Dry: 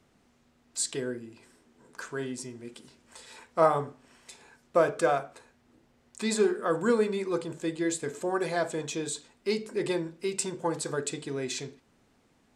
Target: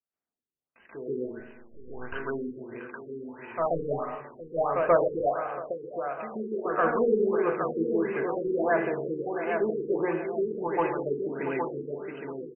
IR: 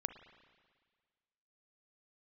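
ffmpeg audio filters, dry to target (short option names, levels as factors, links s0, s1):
-filter_complex "[0:a]highshelf=f=4100:g=-4.5,bandreject=f=60:t=h:w=6,bandreject=f=120:t=h:w=6,bandreject=f=180:t=h:w=6,bandreject=f=240:t=h:w=6,bandreject=f=300:t=h:w=6,bandreject=f=360:t=h:w=6,bandreject=f=420:t=h:w=6,bandreject=f=480:t=h:w=6,bandreject=f=540:t=h:w=6,asplit=2[s0][s1];[s1]adelay=816,lowpass=f=4800:p=1,volume=0.501,asplit=2[s2][s3];[s3]adelay=816,lowpass=f=4800:p=1,volume=0.39,asplit=2[s4][s5];[s5]adelay=816,lowpass=f=4800:p=1,volume=0.39,asplit=2[s6][s7];[s7]adelay=816,lowpass=f=4800:p=1,volume=0.39,asplit=2[s8][s9];[s9]adelay=816,lowpass=f=4800:p=1,volume=0.39[s10];[s0][s2][s4][s6][s8][s10]amix=inputs=6:normalize=0,asettb=1/sr,asplit=3[s11][s12][s13];[s11]atrim=end=5.164[s14];[s12]atrim=start=5.16:end=6.52,asetpts=PTS-STARTPTS,afade=t=in:d=0.004:c=qsin,afade=t=out:st=1.356:d=0.004:c=qsin,acompressor=threshold=0.0224:ratio=6[s15];[s13]atrim=start=6.516[s16];[s14][s15]acrossfade=d=0.004:c1=hsin:c2=qsin[s17];[s17][s16]acrossfade=d=0.004:c1=qsin:c2=hsin,asplit=2[s18][s19];[s19]highpass=f=720:p=1,volume=5.01,asoftclip=type=tanh:threshold=0.355[s20];[s18][s20]amix=inputs=2:normalize=0,lowpass=f=3400:p=1,volume=0.501,asettb=1/sr,asplit=3[s21][s22][s23];[s21]atrim=end=1.264[s24];[s22]atrim=start=1.26:end=2.05,asetpts=PTS-STARTPTS,afade=t=in:d=0.004:c=qsin,afade=t=out:st=0.786:d=0.004:c=qsin,aeval=exprs='max(val(0),0)':c=same[s25];[s23]atrim=start=2.046[s26];[s24][s25]acrossfade=d=0.004:c1=hsin:c2=qsin[s27];[s27][s26]acrossfade=d=0.004:c1=qsin:c2=hsin,agate=range=0.0224:threshold=0.00141:ratio=16:detection=peak,asplit=2[s28][s29];[1:a]atrim=start_sample=2205,afade=t=out:st=0.44:d=0.01,atrim=end_sample=19845,adelay=133[s30];[s29][s30]afir=irnorm=-1:irlink=0,volume=2.82[s31];[s28][s31]amix=inputs=2:normalize=0,afftfilt=real='re*lt(b*sr/1024,470*pow(3100/470,0.5+0.5*sin(2*PI*1.5*pts/sr)))':imag='im*lt(b*sr/1024,470*pow(3100/470,0.5+0.5*sin(2*PI*1.5*pts/sr)))':win_size=1024:overlap=0.75,volume=0.376"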